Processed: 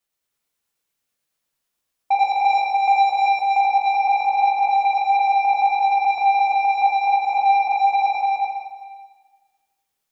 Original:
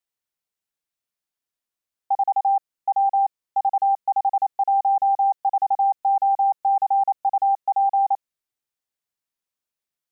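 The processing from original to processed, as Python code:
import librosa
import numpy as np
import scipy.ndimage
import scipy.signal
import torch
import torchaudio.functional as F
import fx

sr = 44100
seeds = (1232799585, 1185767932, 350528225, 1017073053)

y = fx.dynamic_eq(x, sr, hz=570.0, q=1.8, threshold_db=-39.0, ratio=4.0, max_db=5, at=(2.14, 3.59), fade=0.02)
y = 10.0 ** (-20.5 / 20.0) * np.tanh(y / 10.0 ** (-20.5 / 20.0))
y = fx.tremolo_shape(y, sr, shape='triangle', hz=9.1, depth_pct=55)
y = y + 10.0 ** (-3.0 / 20.0) * np.pad(y, (int(296 * sr / 1000.0), 0))[:len(y)]
y = fx.rev_plate(y, sr, seeds[0], rt60_s=1.4, hf_ratio=1.0, predelay_ms=0, drr_db=-2.0)
y = F.gain(torch.from_numpy(y), 6.5).numpy()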